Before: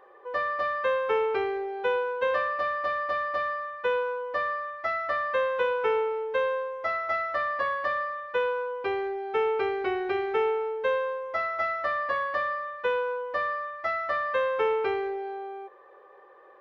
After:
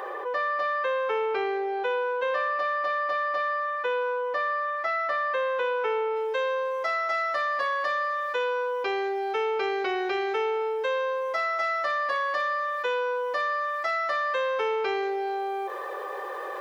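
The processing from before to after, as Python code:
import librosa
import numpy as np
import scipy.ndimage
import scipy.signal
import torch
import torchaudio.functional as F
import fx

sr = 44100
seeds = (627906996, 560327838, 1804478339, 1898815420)

y = fx.bass_treble(x, sr, bass_db=-14, treble_db=fx.steps((0.0, 4.0), (6.15, 15.0)))
y = fx.env_flatten(y, sr, amount_pct=70)
y = y * 10.0 ** (-2.0 / 20.0)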